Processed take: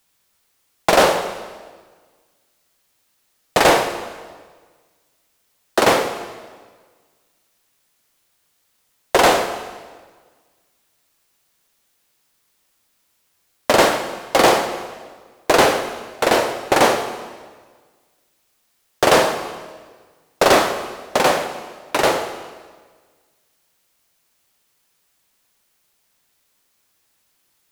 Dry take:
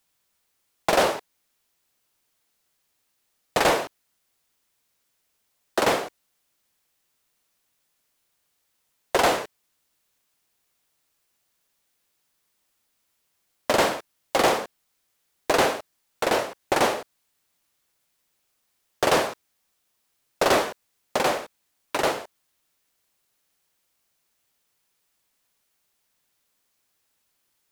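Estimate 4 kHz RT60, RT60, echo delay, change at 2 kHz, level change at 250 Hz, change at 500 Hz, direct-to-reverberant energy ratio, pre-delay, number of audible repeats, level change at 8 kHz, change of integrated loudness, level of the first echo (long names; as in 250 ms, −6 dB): 1.3 s, 1.5 s, no echo audible, +7.0 dB, +7.5 dB, +7.5 dB, 7.5 dB, 18 ms, no echo audible, +7.0 dB, +6.5 dB, no echo audible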